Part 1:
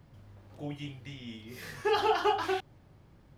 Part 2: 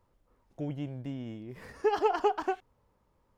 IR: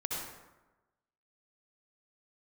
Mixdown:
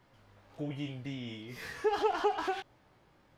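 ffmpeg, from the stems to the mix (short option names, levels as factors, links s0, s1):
-filter_complex "[0:a]flanger=delay=15.5:depth=4.3:speed=1.4,asplit=2[s0][s1];[s1]highpass=f=720:p=1,volume=11.2,asoftclip=type=tanh:threshold=0.133[s2];[s0][s2]amix=inputs=2:normalize=0,lowpass=f=5400:p=1,volume=0.501,volume=0.316[s3];[1:a]volume=0.708,asplit=2[s4][s5];[s5]apad=whole_len=149055[s6];[s3][s6]sidechaincompress=threshold=0.0158:ratio=8:attack=16:release=104[s7];[s7][s4]amix=inputs=2:normalize=0"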